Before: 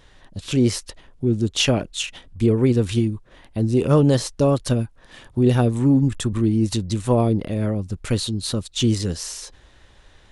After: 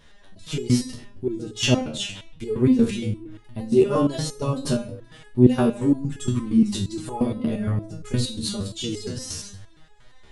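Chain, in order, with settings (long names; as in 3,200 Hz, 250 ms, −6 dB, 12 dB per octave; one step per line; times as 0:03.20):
rectangular room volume 2,100 cubic metres, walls furnished, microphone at 1.3 metres
step-sequenced resonator 8.6 Hz 76–420 Hz
level +7.5 dB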